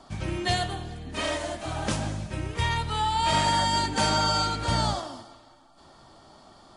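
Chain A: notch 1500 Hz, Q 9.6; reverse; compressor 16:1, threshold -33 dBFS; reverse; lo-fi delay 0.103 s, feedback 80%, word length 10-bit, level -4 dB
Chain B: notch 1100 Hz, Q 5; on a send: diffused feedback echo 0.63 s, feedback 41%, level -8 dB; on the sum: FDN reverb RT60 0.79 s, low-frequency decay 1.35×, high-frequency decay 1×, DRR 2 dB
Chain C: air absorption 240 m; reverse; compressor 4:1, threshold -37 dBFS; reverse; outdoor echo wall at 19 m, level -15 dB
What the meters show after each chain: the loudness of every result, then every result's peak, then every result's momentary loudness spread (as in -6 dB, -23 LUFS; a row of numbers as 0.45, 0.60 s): -34.0, -24.5, -39.0 LUFS; -20.5, -9.5, -26.5 dBFS; 16, 15, 17 LU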